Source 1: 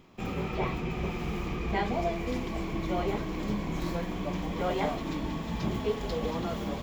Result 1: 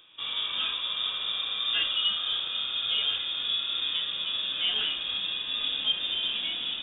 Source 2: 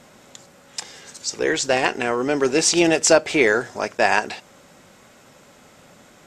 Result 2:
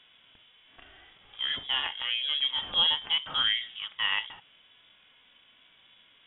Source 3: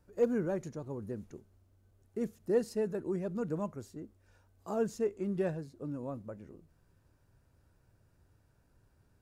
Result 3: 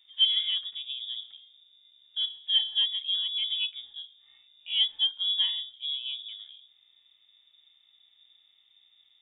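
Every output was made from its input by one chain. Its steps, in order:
hum removal 121.5 Hz, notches 4
harmonic and percussive parts rebalanced percussive −10 dB
voice inversion scrambler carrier 3,600 Hz
loudness normalisation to −27 LKFS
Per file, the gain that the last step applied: +3.5, −6.5, +6.0 decibels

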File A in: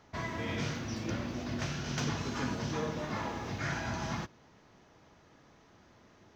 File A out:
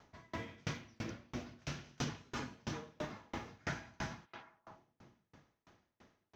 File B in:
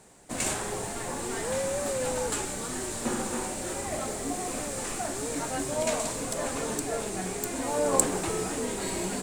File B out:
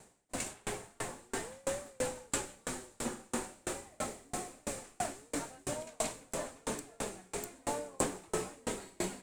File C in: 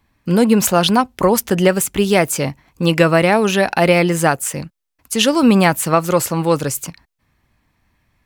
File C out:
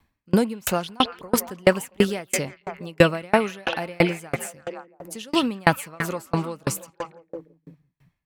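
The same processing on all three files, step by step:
echo through a band-pass that steps 169 ms, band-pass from 2,700 Hz, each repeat −0.7 octaves, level −4 dB
tremolo with a ramp in dB decaying 3 Hz, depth 35 dB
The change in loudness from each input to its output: −9.0, −9.0, −8.5 LU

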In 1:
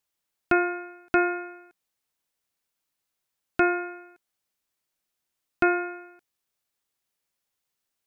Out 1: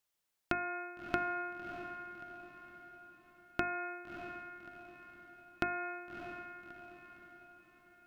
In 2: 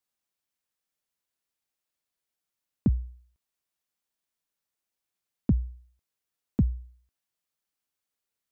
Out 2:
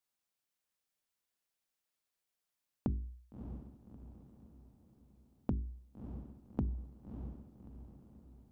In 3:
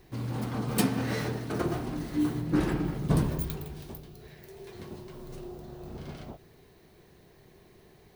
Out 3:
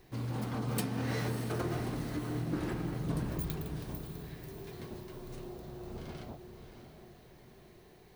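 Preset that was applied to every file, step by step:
downward compressor 12 to 1, threshold −28 dBFS
mains-hum notches 50/100/150/200/250/300/350/400 Hz
feedback delay with all-pass diffusion 623 ms, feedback 48%, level −8.5 dB
level −2 dB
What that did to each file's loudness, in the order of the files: −14.5, −14.0, −7.0 LU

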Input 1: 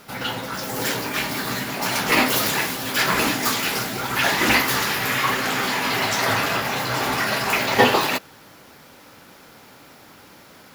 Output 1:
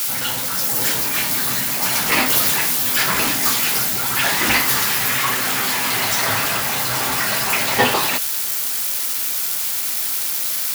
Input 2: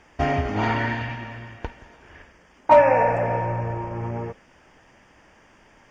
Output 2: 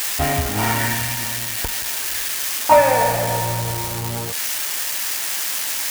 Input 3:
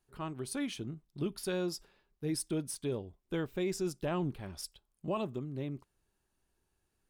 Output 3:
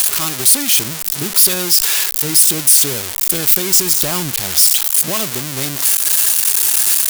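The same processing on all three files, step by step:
spike at every zero crossing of −15.5 dBFS
dynamic equaliser 370 Hz, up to −4 dB, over −36 dBFS, Q 0.7
normalise the peak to −2 dBFS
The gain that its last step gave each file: +0.5, +3.5, +11.5 decibels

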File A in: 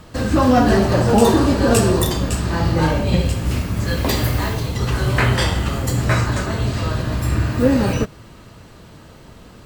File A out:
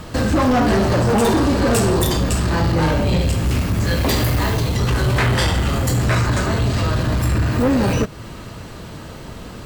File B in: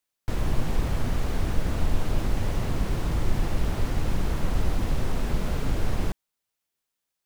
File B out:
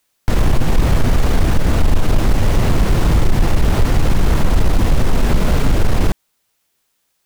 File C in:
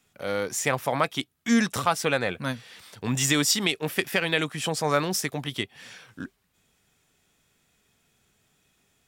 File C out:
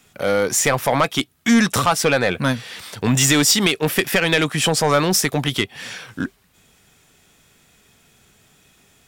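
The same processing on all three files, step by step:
in parallel at +1.5 dB: downward compressor, threshold −26 dBFS
on the sum: soft clipping −13.5 dBFS
loudness normalisation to −18 LKFS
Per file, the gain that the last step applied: +1.5, +9.5, +5.5 decibels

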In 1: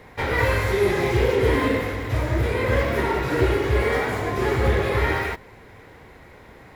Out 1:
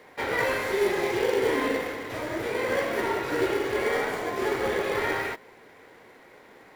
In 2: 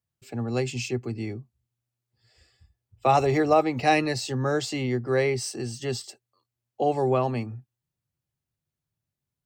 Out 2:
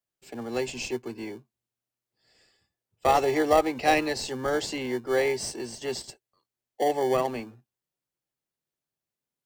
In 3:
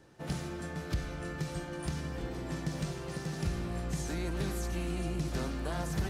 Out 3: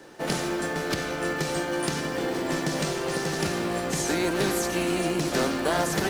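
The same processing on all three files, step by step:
high-pass filter 320 Hz 12 dB per octave
in parallel at −10 dB: decimation without filtering 34×
on the sum: loudness normalisation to −27 LKFS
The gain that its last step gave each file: −4.0, −1.0, +13.5 decibels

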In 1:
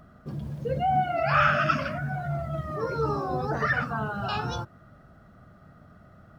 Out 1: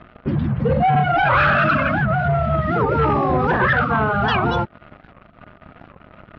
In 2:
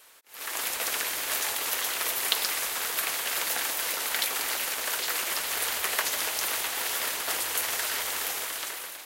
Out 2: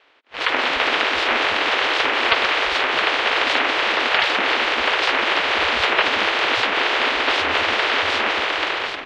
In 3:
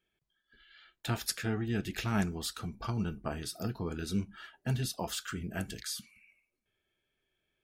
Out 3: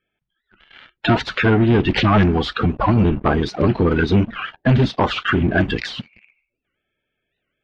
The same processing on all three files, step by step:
spectral magnitudes quantised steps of 30 dB
leveller curve on the samples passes 3
downward compressor 2 to 1, threshold −24 dBFS
low-pass filter 3,200 Hz 24 dB per octave
wow of a warped record 78 rpm, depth 250 cents
loudness normalisation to −18 LKFS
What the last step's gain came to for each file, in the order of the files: +6.0, +10.5, +12.0 decibels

